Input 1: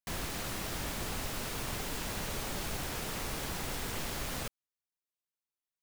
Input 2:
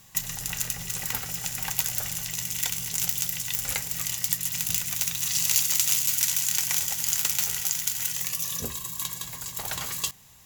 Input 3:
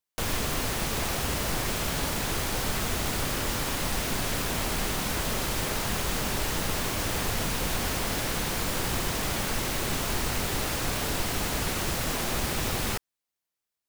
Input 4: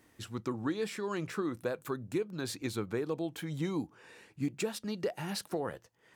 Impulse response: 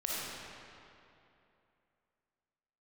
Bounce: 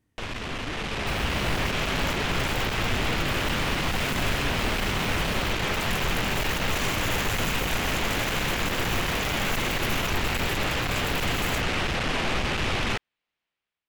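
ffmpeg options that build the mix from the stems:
-filter_complex "[0:a]highpass=45,adelay=1000,volume=-5dB,asplit=3[link_01][link_02][link_03];[link_01]atrim=end=1.71,asetpts=PTS-STARTPTS,afade=type=out:start_time=1.706:duration=0.004:curve=hsin[link_04];[link_02]atrim=start=1.71:end=3.31,asetpts=PTS-STARTPTS,volume=0[link_05];[link_03]atrim=start=3.31,asetpts=PTS-STARTPTS,afade=type=in:duration=0.004:curve=hsin[link_06];[link_04][link_05][link_06]concat=n=3:v=0:a=1[link_07];[1:a]alimiter=limit=-15.5dB:level=0:latency=1:release=56,adelay=1500,volume=-12dB[link_08];[2:a]lowpass=frequency=2800:width_type=q:width=1.7,aeval=exprs='(tanh(35.5*val(0)+0.4)-tanh(0.4))/35.5':channel_layout=same,volume=1dB[link_09];[3:a]volume=-15dB,asplit=2[link_10][link_11];[link_11]apad=whole_len=527010[link_12];[link_08][link_12]sidechaincompress=threshold=-51dB:ratio=8:attack=16:release=539[link_13];[link_07][link_13][link_10]amix=inputs=3:normalize=0,bass=frequency=250:gain=14,treble=frequency=4000:gain=1,alimiter=level_in=6.5dB:limit=-24dB:level=0:latency=1:release=413,volume=-6.5dB,volume=0dB[link_14];[link_09][link_14]amix=inputs=2:normalize=0,dynaudnorm=framelen=670:gausssize=3:maxgain=7dB"

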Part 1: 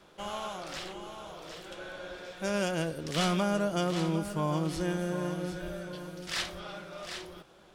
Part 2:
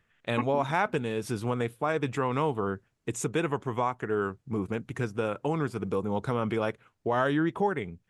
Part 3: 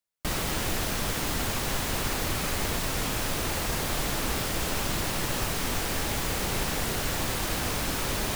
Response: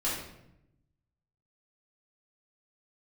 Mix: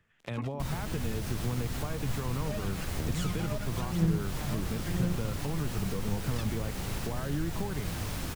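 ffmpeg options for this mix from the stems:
-filter_complex "[0:a]aphaser=in_gain=1:out_gain=1:delay=1.7:decay=0.79:speed=0.99:type=triangular,acrusher=bits=3:mix=0:aa=0.5,volume=-6.5dB[link_01];[1:a]alimiter=limit=-19dB:level=0:latency=1,volume=-1.5dB[link_02];[2:a]flanger=delay=4:depth=9:regen=72:speed=0.56:shape=triangular,adelay=350,volume=0.5dB[link_03];[link_01][link_02][link_03]amix=inputs=3:normalize=0,equalizer=frequency=110:width_type=o:width=2.3:gain=3.5,acrossover=split=200[link_04][link_05];[link_05]acompressor=threshold=-38dB:ratio=4[link_06];[link_04][link_06]amix=inputs=2:normalize=0"

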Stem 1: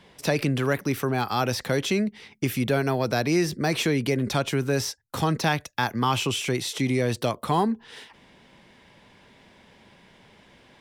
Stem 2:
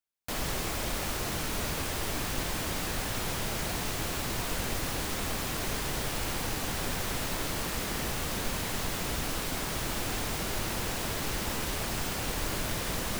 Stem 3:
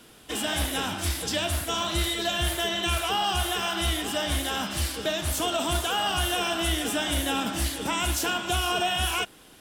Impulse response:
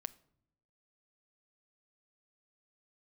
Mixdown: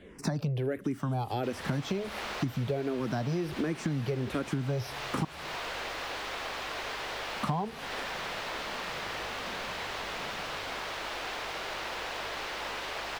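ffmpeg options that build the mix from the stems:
-filter_complex "[0:a]tiltshelf=frequency=1300:gain=7,asplit=2[link_01][link_02];[link_02]afreqshift=-1.4[link_03];[link_01][link_03]amix=inputs=2:normalize=1,volume=-0.5dB,asplit=3[link_04][link_05][link_06];[link_04]atrim=end=5.25,asetpts=PTS-STARTPTS,afade=type=out:start_time=5.246:duration=0.004:curve=hsin[link_07];[link_05]atrim=start=5.25:end=7.36,asetpts=PTS-STARTPTS,volume=0[link_08];[link_06]atrim=start=7.36,asetpts=PTS-STARTPTS,afade=type=in:duration=0.004:curve=hsin[link_09];[link_07][link_08][link_09]concat=n=3:v=0:a=1,asplit=3[link_10][link_11][link_12];[link_11]volume=-5.5dB[link_13];[1:a]acrossover=split=420 4700:gain=0.0708 1 0.0891[link_14][link_15][link_16];[link_14][link_15][link_16]amix=inputs=3:normalize=0,aeval=exprs='val(0)+0.00141*(sin(2*PI*50*n/s)+sin(2*PI*2*50*n/s)/2+sin(2*PI*3*50*n/s)/3+sin(2*PI*4*50*n/s)/4+sin(2*PI*5*50*n/s)/5)':channel_layout=same,adelay=1150,volume=1dB[link_17];[2:a]acompressor=threshold=-33dB:ratio=6,adelay=550,volume=-13dB[link_18];[link_12]apad=whole_len=447882[link_19];[link_18][link_19]sidechaingate=range=-33dB:threshold=-44dB:ratio=16:detection=peak[link_20];[3:a]atrim=start_sample=2205[link_21];[link_13][link_21]afir=irnorm=-1:irlink=0[link_22];[link_10][link_17][link_20][link_22]amix=inputs=4:normalize=0,acompressor=threshold=-28dB:ratio=10"

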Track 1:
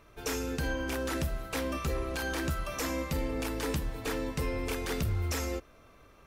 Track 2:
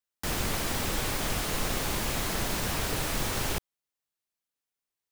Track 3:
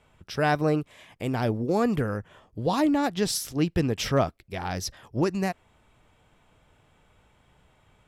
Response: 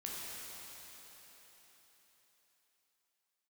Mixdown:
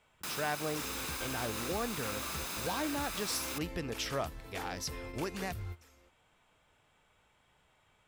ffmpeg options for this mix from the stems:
-filter_complex "[0:a]equalizer=frequency=91:width=0.43:gain=7,adelay=500,volume=-6dB[link_01];[1:a]highpass=150,aecho=1:1:0.8:0.41,volume=-5dB[link_02];[2:a]volume=-3.5dB,asplit=2[link_03][link_04];[link_04]apad=whole_len=298532[link_05];[link_01][link_05]sidechaingate=range=-22dB:threshold=-57dB:ratio=16:detection=peak[link_06];[link_06][link_02][link_03]amix=inputs=3:normalize=0,lowshelf=frequency=490:gain=-10,acompressor=threshold=-38dB:ratio=1.5"

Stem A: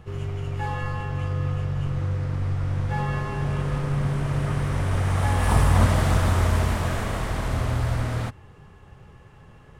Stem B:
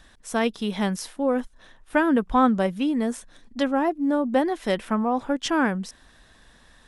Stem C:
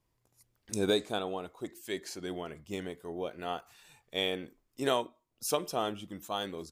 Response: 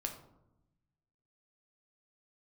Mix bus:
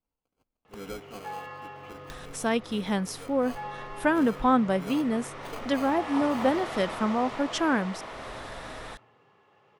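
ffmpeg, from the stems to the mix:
-filter_complex "[0:a]highpass=frequency=110:width=0.5412,highpass=frequency=110:width=1.3066,acrossover=split=310 5600:gain=0.112 1 0.0891[link_01][link_02][link_03];[link_01][link_02][link_03]amix=inputs=3:normalize=0,bandreject=frequency=1600:width=10,adelay=650,volume=-8.5dB,asplit=2[link_04][link_05];[link_05]volume=-9.5dB[link_06];[1:a]acompressor=mode=upward:threshold=-29dB:ratio=2.5,adelay=2100,volume=-3dB[link_07];[2:a]aecho=1:1:4.1:0.8,acrusher=samples=24:mix=1:aa=0.000001,volume=-13dB[link_08];[3:a]atrim=start_sample=2205[link_09];[link_06][link_09]afir=irnorm=-1:irlink=0[link_10];[link_04][link_07][link_08][link_10]amix=inputs=4:normalize=0"

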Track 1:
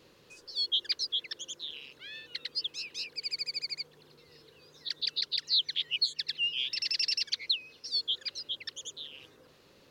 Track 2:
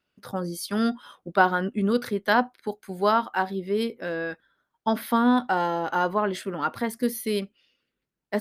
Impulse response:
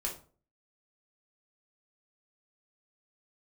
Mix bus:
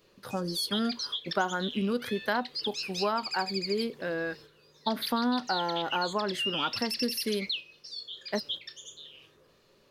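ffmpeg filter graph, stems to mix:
-filter_complex "[0:a]alimiter=level_in=5dB:limit=-24dB:level=0:latency=1:release=27,volume=-5dB,volume=2dB,asplit=2[link_01][link_02];[link_02]volume=-9.5dB[link_03];[1:a]volume=-2dB,asplit=2[link_04][link_05];[link_05]apad=whole_len=436673[link_06];[link_01][link_06]sidechaingate=range=-16dB:threshold=-51dB:ratio=16:detection=peak[link_07];[2:a]atrim=start_sample=2205[link_08];[link_03][link_08]afir=irnorm=-1:irlink=0[link_09];[link_07][link_04][link_09]amix=inputs=3:normalize=0,acompressor=threshold=-27dB:ratio=2.5"

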